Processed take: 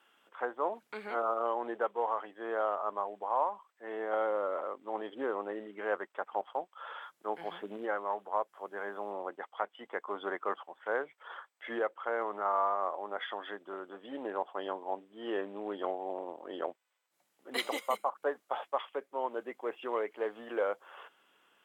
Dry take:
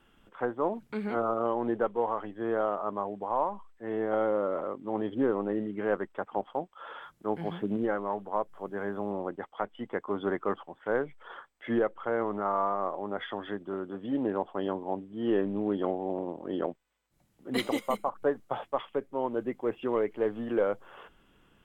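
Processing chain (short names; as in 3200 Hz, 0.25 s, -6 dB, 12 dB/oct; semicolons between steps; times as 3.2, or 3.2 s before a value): HPF 590 Hz 12 dB/oct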